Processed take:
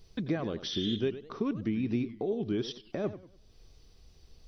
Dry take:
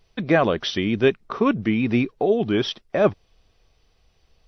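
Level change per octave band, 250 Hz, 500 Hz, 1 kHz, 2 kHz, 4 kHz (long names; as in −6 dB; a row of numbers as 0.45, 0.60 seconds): −9.5, −13.5, −18.5, −18.5, −8.0 decibels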